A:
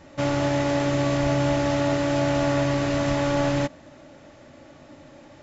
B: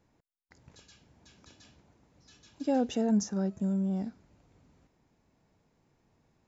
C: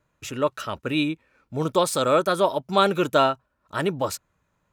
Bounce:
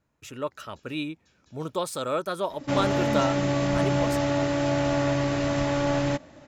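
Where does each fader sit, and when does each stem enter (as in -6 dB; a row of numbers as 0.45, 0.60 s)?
-2.0, -7.0, -8.0 dB; 2.50, 0.00, 0.00 s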